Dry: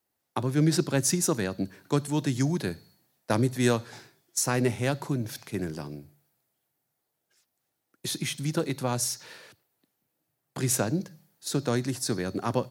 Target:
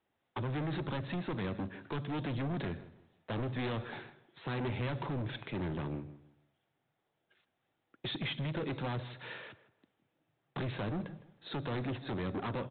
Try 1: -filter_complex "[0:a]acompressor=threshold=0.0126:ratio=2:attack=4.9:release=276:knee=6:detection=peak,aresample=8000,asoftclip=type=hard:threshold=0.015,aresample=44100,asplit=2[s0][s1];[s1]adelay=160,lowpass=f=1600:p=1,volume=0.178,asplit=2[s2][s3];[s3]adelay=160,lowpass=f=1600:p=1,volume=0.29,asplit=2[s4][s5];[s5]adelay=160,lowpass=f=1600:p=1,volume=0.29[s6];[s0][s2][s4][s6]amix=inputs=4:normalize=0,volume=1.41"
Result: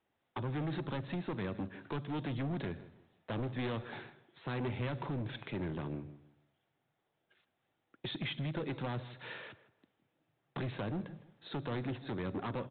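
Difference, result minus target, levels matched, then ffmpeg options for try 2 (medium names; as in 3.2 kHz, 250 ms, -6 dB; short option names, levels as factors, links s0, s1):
compression: peak gain reduction +4 dB
-filter_complex "[0:a]acompressor=threshold=0.0335:ratio=2:attack=4.9:release=276:knee=6:detection=peak,aresample=8000,asoftclip=type=hard:threshold=0.015,aresample=44100,asplit=2[s0][s1];[s1]adelay=160,lowpass=f=1600:p=1,volume=0.178,asplit=2[s2][s3];[s3]adelay=160,lowpass=f=1600:p=1,volume=0.29,asplit=2[s4][s5];[s5]adelay=160,lowpass=f=1600:p=1,volume=0.29[s6];[s0][s2][s4][s6]amix=inputs=4:normalize=0,volume=1.41"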